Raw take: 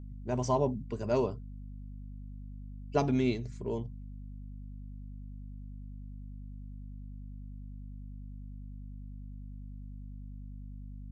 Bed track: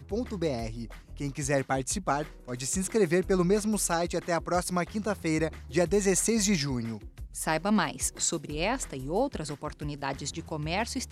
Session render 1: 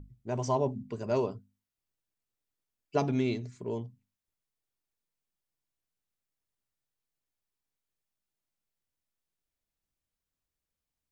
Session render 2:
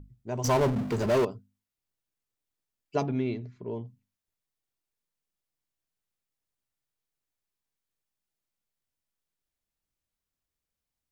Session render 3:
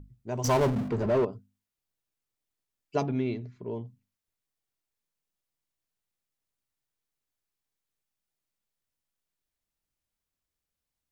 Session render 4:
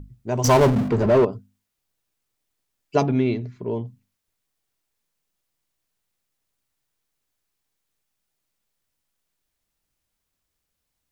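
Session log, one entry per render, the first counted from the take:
hum notches 50/100/150/200/250 Hz
0.44–1.25 s: power-law waveshaper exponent 0.5; 3.03–3.87 s: distance through air 260 m
0.88–1.33 s: low-pass 1.2 kHz 6 dB/octave
trim +8.5 dB

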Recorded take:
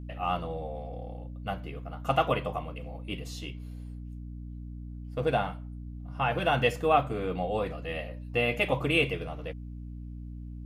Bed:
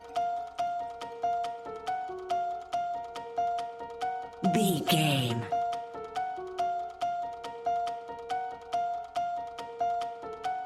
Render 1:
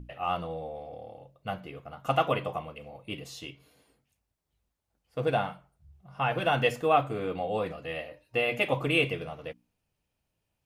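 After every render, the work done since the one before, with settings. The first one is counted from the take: hum notches 60/120/180/240/300 Hz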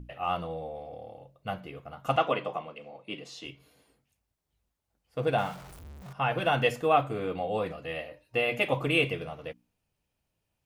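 2.16–3.45 s: three-band isolator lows -24 dB, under 160 Hz, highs -18 dB, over 7.7 kHz; 5.38–6.13 s: jump at every zero crossing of -42 dBFS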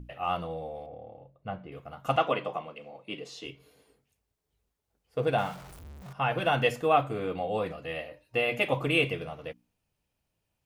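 0.86–1.72 s: tape spacing loss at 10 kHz 30 dB; 3.18–5.25 s: small resonant body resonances 430 Hz, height 9 dB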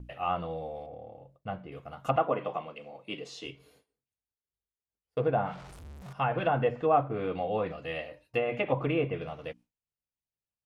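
gate with hold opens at -50 dBFS; low-pass that closes with the level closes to 1.2 kHz, closed at -22.5 dBFS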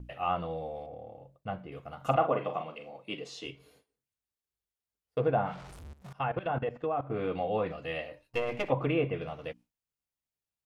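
1.96–2.89 s: doubling 44 ms -8 dB; 5.93–7.10 s: level held to a coarse grid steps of 15 dB; 8.21–8.70 s: partial rectifier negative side -7 dB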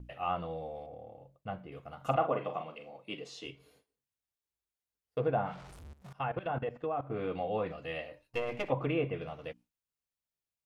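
trim -3 dB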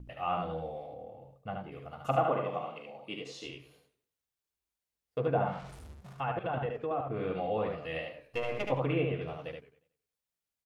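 on a send: delay 74 ms -4 dB; on the sum: modulated delay 92 ms, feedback 37%, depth 182 cents, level -16 dB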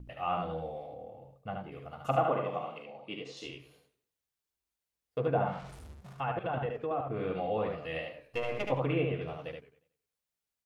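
2.84–3.37 s: distance through air 62 m

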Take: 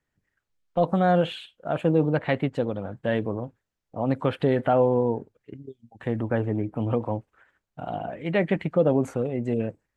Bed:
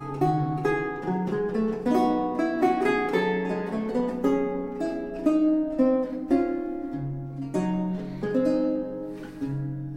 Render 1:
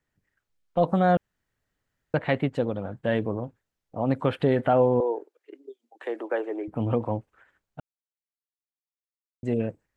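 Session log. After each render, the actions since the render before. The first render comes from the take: 1.17–2.14 s: room tone; 5.00–6.68 s: steep high-pass 320 Hz 48 dB/octave; 7.80–9.43 s: mute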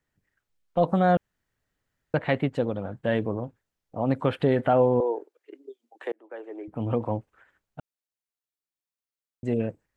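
6.12–7.06 s: fade in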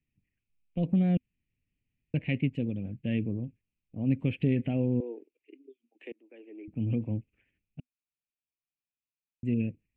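FFT filter 250 Hz 0 dB, 990 Hz -29 dB, 1.4 kHz -30 dB, 2.5 kHz +4 dB, 3.9 kHz -19 dB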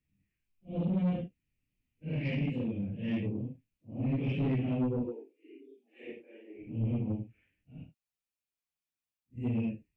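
phase randomisation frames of 200 ms; saturation -25 dBFS, distortion -12 dB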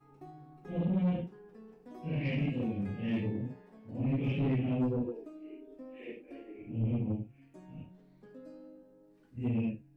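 add bed -27 dB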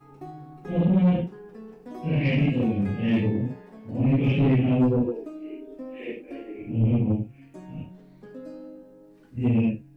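trim +10 dB

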